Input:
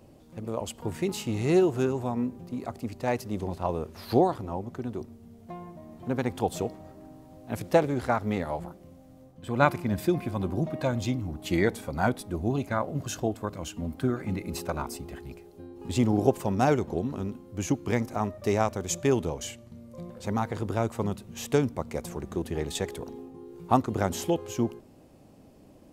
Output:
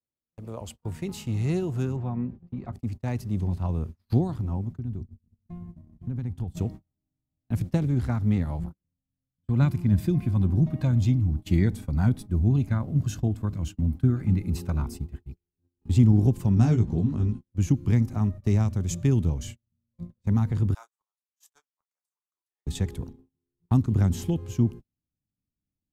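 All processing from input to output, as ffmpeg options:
ffmpeg -i in.wav -filter_complex "[0:a]asettb=1/sr,asplit=3[link_01][link_02][link_03];[link_01]atrim=end=1.964[link_04];[link_02]atrim=start=1.96:end=2.73,asetpts=PTS-STARTPTS,afade=type=in:duration=0.004:curve=qsin,afade=type=out:start_time=0.766:duration=0.004:curve=qsin,lowpass=2800,aecho=1:1:5.6:0.4,atrim=end_sample=33957[link_05];[link_03]atrim=start=2.726[link_06];[link_04][link_05]acrossfade=duration=0.004:curve1=hsin:curve2=qsin[link_07];[link_07][link_06]acrossfade=duration=0.004:curve1=qsin:curve2=hsin,asettb=1/sr,asplit=3[link_08][link_09][link_10];[link_08]atrim=end=4.784[link_11];[link_09]atrim=start=4.78:end=6.57,asetpts=PTS-STARTPTS,afade=type=in:duration=0.004:curve=qsin,afade=type=out:start_time=1.786:duration=0.004:curve=qsin,lowshelf=frequency=210:gain=9.5,acompressor=threshold=-35dB:ratio=4:attack=3.2:release=140:knee=1:detection=peak[link_12];[link_10]atrim=start=6.566[link_13];[link_11][link_12]acrossfade=duration=0.004:curve1=hsin:curve2=qsin[link_14];[link_14][link_13]acrossfade=duration=0.004:curve1=qsin:curve2=hsin,asettb=1/sr,asplit=3[link_15][link_16][link_17];[link_15]atrim=end=16.554[link_18];[link_16]atrim=start=16.55:end=17.41,asetpts=PTS-STARTPTS,afade=type=in:duration=0.004:curve=qsin,afade=type=out:start_time=0.856:duration=0.004:curve=qsin,lowpass=frequency=10000:width=0.5412,lowpass=frequency=10000:width=1.3066,asplit=2[link_19][link_20];[link_20]adelay=18,volume=-4.5dB[link_21];[link_19][link_21]amix=inputs=2:normalize=0,atrim=end_sample=37926[link_22];[link_17]atrim=start=17.406[link_23];[link_18][link_22]acrossfade=duration=0.004:curve1=hsin:curve2=qsin[link_24];[link_24][link_23]acrossfade=duration=0.004:curve1=qsin:curve2=hsin,asettb=1/sr,asplit=3[link_25][link_26][link_27];[link_25]atrim=end=20.744[link_28];[link_26]atrim=start=20.74:end=22.66,asetpts=PTS-STARTPTS,afade=type=in:duration=0.004:curve=qsin,afade=type=out:start_time=1.916:duration=0.004:curve=qsin,highpass=frequency=1000:width=0.5412,highpass=frequency=1000:width=1.3066,equalizer=frequency=2400:width=0.87:gain=-13.5,asplit=2[link_29][link_30];[link_30]adelay=32,volume=-8.5dB[link_31];[link_29][link_31]amix=inputs=2:normalize=0,atrim=end_sample=84672[link_32];[link_27]atrim=start=22.656[link_33];[link_28][link_32]acrossfade=duration=0.004:curve1=hsin:curve2=qsin[link_34];[link_34][link_33]acrossfade=duration=0.004:curve1=qsin:curve2=hsin,agate=range=-41dB:threshold=-38dB:ratio=16:detection=peak,asubboost=boost=9.5:cutoff=170,acrossover=split=370|3000[link_35][link_36][link_37];[link_36]acompressor=threshold=-29dB:ratio=6[link_38];[link_35][link_38][link_37]amix=inputs=3:normalize=0,volume=-5dB" out.wav

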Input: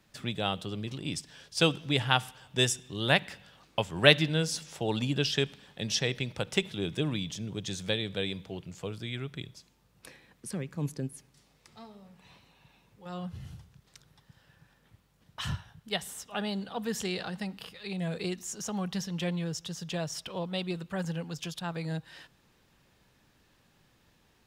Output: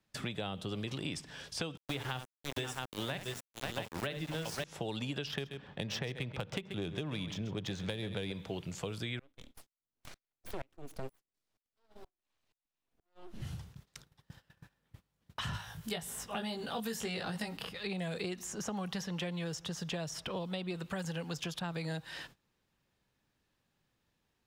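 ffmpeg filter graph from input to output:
ffmpeg -i in.wav -filter_complex "[0:a]asettb=1/sr,asplit=3[link_01][link_02][link_03];[link_01]atrim=end=1.774[link_04];[link_02]atrim=start=1.77:end=4.64,asetpts=PTS-STARTPTS,afade=type=in:duration=0.004:curve=qsin,afade=type=out:start_time=2.866:duration=0.004:curve=qsin,bandreject=frequency=50:width_type=h:width=6,bandreject=frequency=100:width_type=h:width=6,bandreject=frequency=150:width_type=h:width=6,bandreject=frequency=200:width_type=h:width=6,bandreject=frequency=250:width_type=h:width=6,bandreject=frequency=300:width_type=h:width=6,bandreject=frequency=350:width_type=h:width=6,bandreject=frequency=400:width_type=h:width=6,bandreject=frequency=450:width_type=h:width=6,aecho=1:1:63|537|673:0.251|0.282|0.447,atrim=end_sample=126567,aeval=exprs='val(0)*gte(abs(val(0)),0.0251)':channel_layout=same[link_05];[link_03]atrim=start=4.636[link_06];[link_04][link_05]acrossfade=duration=0.004:curve1=hsin:curve2=qsin[link_07];[link_07][link_06]acrossfade=duration=0.004:curve1=qsin:curve2=hsin,asettb=1/sr,asplit=3[link_08][link_09][link_10];[link_08]atrim=end=5.274[link_11];[link_09]atrim=start=5.27:end=8.32,asetpts=PTS-STARTPTS,afade=type=in:duration=0.004:curve=qsin,afade=type=out:start_time=3.046:duration=0.004:curve=qsin,equalizer=frequency=98:width_type=o:width=2.5:gain=5,adynamicsmooth=sensitivity=5:basefreq=2600,aecho=1:1:132:0.178,atrim=end_sample=134505[link_12];[link_10]atrim=start=8.316[link_13];[link_11][link_12]acrossfade=duration=0.004:curve1=hsin:curve2=qsin[link_14];[link_14][link_13]acrossfade=duration=0.004:curve1=qsin:curve2=hsin,asettb=1/sr,asplit=3[link_15][link_16][link_17];[link_15]atrim=end=9.194[link_18];[link_16]atrim=start=9.19:end=13.42,asetpts=PTS-STARTPTS,afade=type=in:duration=0.004:curve=qsin,afade=type=out:start_time=4.226:duration=0.004:curve=qsin,aeval=exprs='abs(val(0))':channel_layout=same,aeval=exprs='val(0)*pow(10,-32*if(lt(mod(-2.1*n/s,1),2*abs(-2.1)/1000),1-mod(-2.1*n/s,1)/(2*abs(-2.1)/1000),(mod(-2.1*n/s,1)-2*abs(-2.1)/1000)/(1-2*abs(-2.1)/1000))/20)':channel_layout=same[link_19];[link_17]atrim=start=13.416[link_20];[link_18][link_19]acrossfade=duration=0.004:curve1=hsin:curve2=qsin[link_21];[link_21][link_20]acrossfade=duration=0.004:curve1=qsin:curve2=hsin,asettb=1/sr,asplit=3[link_22][link_23][link_24];[link_22]atrim=end=15.534[link_25];[link_23]atrim=start=15.53:end=17.57,asetpts=PTS-STARTPTS,afade=type=in:duration=0.004:curve=qsin,afade=type=out:start_time=2.036:duration=0.004:curve=qsin,highshelf=frequency=5700:gain=10,acompressor=mode=upward:threshold=-49dB:ratio=2.5:attack=3.2:release=140:knee=2.83:detection=peak,asplit=2[link_26][link_27];[link_27]adelay=18,volume=-2dB[link_28];[link_26][link_28]amix=inputs=2:normalize=0,atrim=end_sample=89964[link_29];[link_24]atrim=start=17.566[link_30];[link_25][link_29]acrossfade=duration=0.004:curve1=hsin:curve2=qsin[link_31];[link_31][link_30]acrossfade=duration=0.004:curve1=qsin:curve2=hsin,acrossover=split=430|2400[link_32][link_33][link_34];[link_32]acompressor=threshold=-43dB:ratio=4[link_35];[link_33]acompressor=threshold=-44dB:ratio=4[link_36];[link_34]acompressor=threshold=-49dB:ratio=4[link_37];[link_35][link_36][link_37]amix=inputs=3:normalize=0,agate=range=-19dB:threshold=-58dB:ratio=16:detection=peak,acompressor=threshold=-39dB:ratio=6,volume=5.5dB" out.wav

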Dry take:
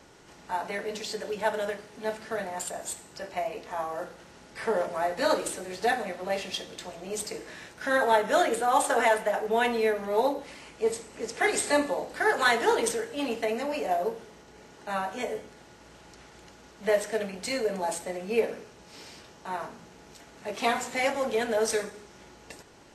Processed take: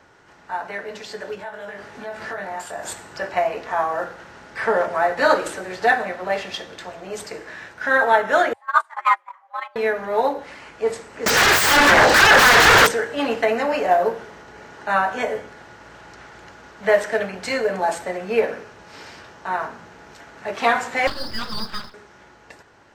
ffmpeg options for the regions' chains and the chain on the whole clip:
ffmpeg -i in.wav -filter_complex "[0:a]asettb=1/sr,asplit=3[link_01][link_02][link_03];[link_01]atrim=end=1.354[link_04];[link_02]atrim=start=1.35:end=2.83,asetpts=PTS-STARTPTS,afade=type=in:duration=0.004:curve=qsin,afade=type=out:start_time=1.476:duration=0.004:curve=qsin,acompressor=threshold=-40dB:ratio=4:attack=3.2:release=140:knee=1:detection=peak,asplit=2[link_05][link_06];[link_06]adelay=20,volume=-3dB[link_07];[link_05][link_07]amix=inputs=2:normalize=0,atrim=end_sample=65268[link_08];[link_03]atrim=start=2.826[link_09];[link_04][link_08]acrossfade=duration=0.004:curve1=hsin:curve2=qsin[link_10];[link_10][link_09]acrossfade=duration=0.004:curve1=qsin:curve2=hsin,asettb=1/sr,asplit=3[link_11][link_12][link_13];[link_11]atrim=end=8.534[link_14];[link_12]atrim=start=8.53:end=9.76,asetpts=PTS-STARTPTS,afade=type=in:duration=0.004:curve=qsin,afade=type=out:start_time=1.226:duration=0.004:curve=qsin,agate=range=-30dB:threshold=-22dB:ratio=16:release=100:detection=peak,highshelf=frequency=11000:gain=-6.5,afreqshift=360[link_15];[link_13]atrim=start=9.756[link_16];[link_14][link_15]acrossfade=duration=0.004:curve1=hsin:curve2=qsin[link_17];[link_17][link_16]acrossfade=duration=0.004:curve1=qsin:curve2=hsin,asettb=1/sr,asplit=3[link_18][link_19][link_20];[link_18]atrim=end=11.264[link_21];[link_19]atrim=start=11.26:end=12.87,asetpts=PTS-STARTPTS,afade=type=in:duration=0.004:curve=qsin,afade=type=out:start_time=1.606:duration=0.004:curve=qsin,equalizer=frequency=4500:width=0.45:gain=10.5,acompressor=threshold=-28dB:ratio=8:attack=3.2:release=140:knee=1:detection=peak,aeval=exprs='0.126*sin(PI/2*7.08*val(0)/0.126)':channel_layout=same[link_22];[link_20]atrim=start=12.866[link_23];[link_21][link_22]acrossfade=duration=0.004:curve1=hsin:curve2=qsin[link_24];[link_24][link_23]acrossfade=duration=0.004:curve1=qsin:curve2=hsin,asettb=1/sr,asplit=3[link_25][link_26][link_27];[link_25]atrim=end=21.074[link_28];[link_26]atrim=start=21.07:end=21.94,asetpts=PTS-STARTPTS,afade=type=in:duration=0.004:curve=qsin,afade=type=out:start_time=0.866:duration=0.004:curve=qsin,lowpass=frequency=2500:width_type=q:width=0.5098,lowpass=frequency=2500:width_type=q:width=0.6013,lowpass=frequency=2500:width_type=q:width=0.9,lowpass=frequency=2500:width_type=q:width=2.563,afreqshift=-2900,aeval=exprs='abs(val(0))':channel_layout=same[link_29];[link_27]atrim=start=21.936[link_30];[link_28][link_29]acrossfade=duration=0.004:curve1=hsin:curve2=qsin[link_31];[link_31][link_30]acrossfade=duration=0.004:curve1=qsin:curve2=hsin,equalizer=frequency=1000:width_type=o:width=2.4:gain=6.5,dynaudnorm=framelen=290:gausssize=13:maxgain=11.5dB,equalizer=frequency=100:width_type=o:width=0.67:gain=6,equalizer=frequency=1600:width_type=o:width=0.67:gain=6,equalizer=frequency=10000:width_type=o:width=0.67:gain=-7,volume=-4dB" out.wav

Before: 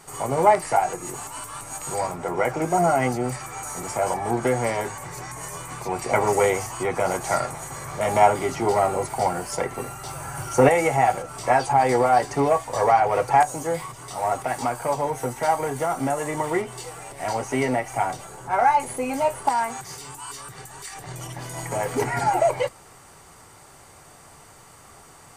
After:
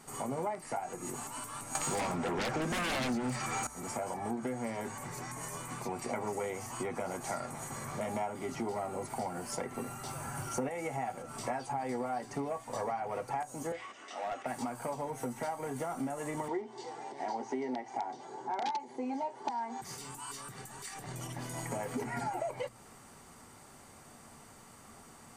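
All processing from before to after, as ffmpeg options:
ffmpeg -i in.wav -filter_complex "[0:a]asettb=1/sr,asplit=3[link_01][link_02][link_03];[link_01]atrim=end=1.754[link_04];[link_02]atrim=start=1.75:end=3.67,asetpts=PTS-STARTPTS,afade=type=in:duration=0.004:curve=qsin,afade=type=out:start_time=1.916:duration=0.004:curve=qsin,lowpass=4000,aemphasis=mode=production:type=75fm,aeval=exprs='0.398*sin(PI/2*5.62*val(0)/0.398)':channel_layout=same[link_05];[link_03]atrim=start=3.666[link_06];[link_04][link_05]acrossfade=duration=0.004:curve1=hsin:curve2=qsin[link_07];[link_07][link_06]acrossfade=duration=0.004:curve1=qsin:curve2=hsin,asettb=1/sr,asplit=3[link_08][link_09][link_10];[link_08]atrim=end=13.724[link_11];[link_09]atrim=start=13.72:end=14.46,asetpts=PTS-STARTPTS,afade=type=in:duration=0.004:curve=qsin,afade=type=out:start_time=0.736:duration=0.004:curve=qsin,highpass=frequency=320:width=0.5412,highpass=frequency=320:width=1.3066,equalizer=frequency=420:width_type=q:width=4:gain=-6,equalizer=frequency=950:width_type=q:width=4:gain=-9,equalizer=frequency=1800:width_type=q:width=4:gain=5,equalizer=frequency=2800:width_type=q:width=4:gain=6,equalizer=frequency=4500:width_type=q:width=4:gain=-7,lowpass=frequency=5900:width=0.5412,lowpass=frequency=5900:width=1.3066,asoftclip=type=hard:threshold=-21.5dB[link_12];[link_10]atrim=start=14.456[link_13];[link_11][link_12]acrossfade=duration=0.004:curve1=hsin:curve2=qsin[link_14];[link_14][link_13]acrossfade=duration=0.004:curve1=qsin:curve2=hsin,asettb=1/sr,asplit=3[link_15][link_16][link_17];[link_15]atrim=end=16.484[link_18];[link_16]atrim=start=16.48:end=19.82,asetpts=PTS-STARTPTS,afade=type=in:duration=0.004:curve=qsin,afade=type=out:start_time=3.336:duration=0.004:curve=qsin,aeval=exprs='(mod(3.55*val(0)+1,2)-1)/3.55':channel_layout=same,highpass=frequency=170:width=0.5412,highpass=frequency=170:width=1.3066,equalizer=frequency=190:width_type=q:width=4:gain=-10,equalizer=frequency=380:width_type=q:width=4:gain=8,equalizer=frequency=570:width_type=q:width=4:gain=-4,equalizer=frequency=850:width_type=q:width=4:gain=9,equalizer=frequency=1300:width_type=q:width=4:gain=-8,equalizer=frequency=2600:width_type=q:width=4:gain=-8,lowpass=frequency=5900:width=0.5412,lowpass=frequency=5900:width=1.3066[link_19];[link_17]atrim=start=19.816[link_20];[link_18][link_19]acrossfade=duration=0.004:curve1=hsin:curve2=qsin[link_21];[link_21][link_20]acrossfade=duration=0.004:curve1=qsin:curve2=hsin,equalizer=frequency=230:width_type=o:width=0.46:gain=12,bandreject=frequency=58.86:width_type=h:width=4,bandreject=frequency=117.72:width_type=h:width=4,acompressor=threshold=-27dB:ratio=5,volume=-7dB" out.wav

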